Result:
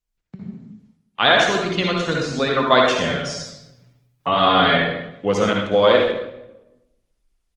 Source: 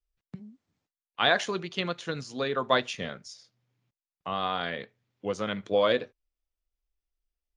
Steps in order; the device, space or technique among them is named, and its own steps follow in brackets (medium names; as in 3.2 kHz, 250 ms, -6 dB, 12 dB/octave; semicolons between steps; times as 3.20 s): 3.03–4.78 s: comb 7.1 ms, depth 90%; speakerphone in a meeting room (reverberation RT60 0.85 s, pre-delay 54 ms, DRR 0 dB; speakerphone echo 150 ms, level -21 dB; level rider gain up to 12.5 dB; Opus 20 kbps 48 kHz)